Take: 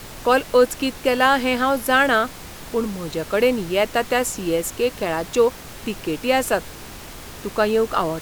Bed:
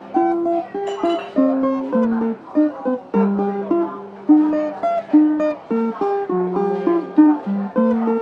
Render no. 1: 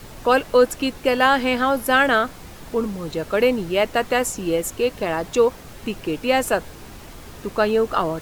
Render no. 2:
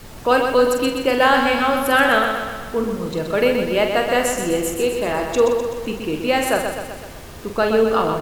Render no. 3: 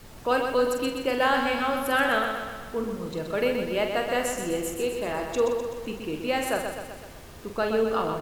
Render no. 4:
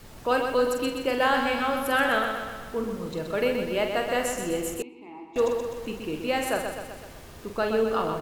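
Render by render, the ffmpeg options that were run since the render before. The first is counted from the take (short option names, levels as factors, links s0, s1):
-af "afftdn=nr=6:nf=-38"
-filter_complex "[0:a]asplit=2[s0][s1];[s1]adelay=45,volume=0.447[s2];[s0][s2]amix=inputs=2:normalize=0,asplit=2[s3][s4];[s4]aecho=0:1:126|252|378|504|630|756|882:0.501|0.286|0.163|0.0928|0.0529|0.0302|0.0172[s5];[s3][s5]amix=inputs=2:normalize=0"
-af "volume=0.398"
-filter_complex "[0:a]asettb=1/sr,asplit=3[s0][s1][s2];[s0]atrim=end=4.824[s3];[s1]atrim=start=4.82:end=5.36,asetpts=PTS-STARTPTS,afade=t=in:d=0.004:c=qsin,afade=t=out:st=0.536:d=0.004:c=qsin,asplit=3[s4][s5][s6];[s4]bandpass=f=300:t=q:w=8,volume=1[s7];[s5]bandpass=f=870:t=q:w=8,volume=0.501[s8];[s6]bandpass=f=2240:t=q:w=8,volume=0.355[s9];[s7][s8][s9]amix=inputs=3:normalize=0[s10];[s2]atrim=start=5.356[s11];[s3][s10]acrossfade=d=0.004:c1=hsin:c2=qsin[s12];[s12][s11]acrossfade=d=0.004:c1=qsin:c2=hsin"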